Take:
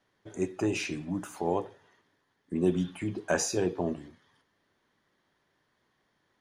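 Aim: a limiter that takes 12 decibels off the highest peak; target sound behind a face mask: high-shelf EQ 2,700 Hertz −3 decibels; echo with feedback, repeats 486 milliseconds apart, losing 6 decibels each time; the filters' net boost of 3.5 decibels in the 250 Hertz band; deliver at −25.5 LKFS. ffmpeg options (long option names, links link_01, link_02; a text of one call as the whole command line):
ffmpeg -i in.wav -af "equalizer=frequency=250:width_type=o:gain=5,alimiter=limit=-23dB:level=0:latency=1,highshelf=frequency=2700:gain=-3,aecho=1:1:486|972|1458|1944|2430|2916:0.501|0.251|0.125|0.0626|0.0313|0.0157,volume=9dB" out.wav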